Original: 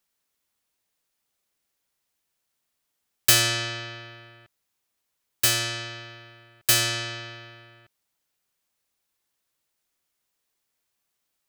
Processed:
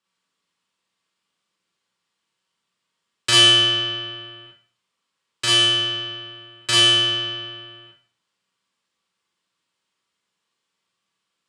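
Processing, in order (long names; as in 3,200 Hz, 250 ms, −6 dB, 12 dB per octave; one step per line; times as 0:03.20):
loudspeaker in its box 100–7,700 Hz, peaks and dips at 170 Hz +5 dB, 710 Hz −6 dB, 1,100 Hz +7 dB, 3,100 Hz +4 dB, 6,200 Hz −6 dB
four-comb reverb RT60 0.44 s, combs from 33 ms, DRR −4 dB
level −1 dB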